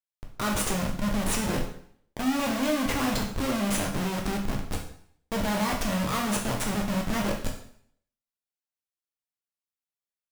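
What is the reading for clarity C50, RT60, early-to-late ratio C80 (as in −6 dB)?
6.5 dB, 0.60 s, 10.5 dB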